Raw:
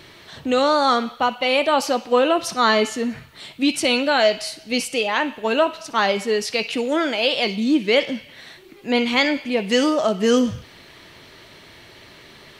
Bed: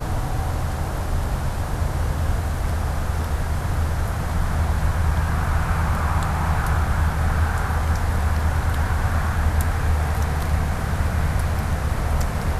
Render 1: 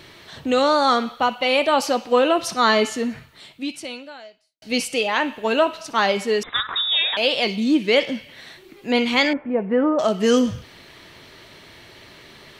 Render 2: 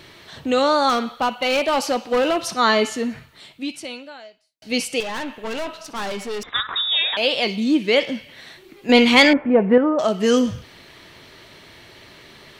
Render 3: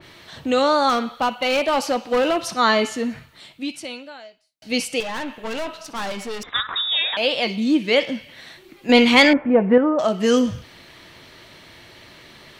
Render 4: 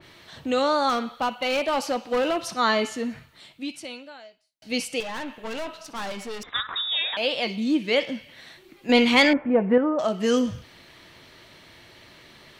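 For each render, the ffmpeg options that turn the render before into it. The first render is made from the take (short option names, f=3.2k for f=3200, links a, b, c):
-filter_complex "[0:a]asettb=1/sr,asplit=3[a][b][c];[a]atrim=end=6.434[d];[b]atrim=start=6.43:end=7.17,asetpts=PTS-STARTPTS,afade=t=in:d=0.004:c=qsin,afade=t=out:st=0.736:d=0.004:c=qsin,lowpass=f=3.4k:t=q:w=0.5098,lowpass=f=3.4k:t=q:w=0.6013,lowpass=f=3.4k:t=q:w=0.9,lowpass=f=3.4k:t=q:w=2.563,afreqshift=-4000[e];[c]atrim=start=7.166[f];[d][e]acrossfade=d=0.004:c1=hsin:c2=qsin[g];[g][f]acrossfade=d=0.004:c1=qsin:c2=hsin,asettb=1/sr,asplit=3[h][i][j];[h]atrim=end=9.334[k];[i]atrim=start=9.33:end=9.99,asetpts=PTS-STARTPTS,afade=t=in:d=0.004:c=qsin,afade=t=out:st=0.656:d=0.004:c=qsin,lowpass=f=1.5k:w=0.5412,lowpass=f=1.5k:w=1.3066[l];[j]atrim=start=9.986[m];[k][l]acrossfade=d=0.004:c1=hsin:c2=qsin[n];[n][m]acrossfade=d=0.004:c1=qsin:c2=hsin,asplit=2[o][p];[o]atrim=end=4.62,asetpts=PTS-STARTPTS,afade=t=out:st=3.01:d=1.61:c=qua[q];[p]atrim=start=4.62,asetpts=PTS-STARTPTS,afade=t=in:d=0.004:c=hsin[r];[q][r]concat=n=2:v=0:a=1"
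-filter_complex "[0:a]asettb=1/sr,asplit=3[a][b][c];[a]atrim=end=0.894[d];[b]atrim=start=0.89:end=2.54,asetpts=PTS-STARTPTS,afade=t=in:d=0.004:c=qsin,afade=t=out:st=1.646:d=0.004:c=qsin,volume=15dB,asoftclip=hard,volume=-15dB[e];[c]atrim=start=2.536[f];[d][e]acrossfade=d=0.004:c1=hsin:c2=qsin[g];[g][f]acrossfade=d=0.004:c1=qsin:c2=hsin,asettb=1/sr,asplit=3[h][i][j];[h]atrim=end=5.004[k];[i]atrim=start=5:end=6.52,asetpts=PTS-STARTPTS,afade=t=in:d=0.004:c=qsin,afade=t=out:st=1.516:d=0.004:c=qsin,aeval=exprs='(tanh(17.8*val(0)+0.5)-tanh(0.5))/17.8':c=same[l];[j]atrim=start=6.516[m];[k][l]acrossfade=d=0.004:c1=hsin:c2=qsin[n];[n][m]acrossfade=d=0.004:c1=qsin:c2=hsin,asettb=1/sr,asplit=3[o][p][q];[o]atrim=end=8.894[r];[p]atrim=start=8.89:end=9.78,asetpts=PTS-STARTPTS,afade=t=in:d=0.004:c=qsin,afade=t=out:st=0.886:d=0.004:c=qsin,acontrast=86[s];[q]atrim=start=9.776[t];[r][s]acrossfade=d=0.004:c1=hsin:c2=qsin[u];[u][t]acrossfade=d=0.004:c1=qsin:c2=hsin"
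-af "bandreject=f=410:w=12,adynamicequalizer=threshold=0.0282:dfrequency=2800:dqfactor=0.7:tfrequency=2800:tqfactor=0.7:attack=5:release=100:ratio=0.375:range=1.5:mode=cutabove:tftype=highshelf"
-af "volume=-4.5dB"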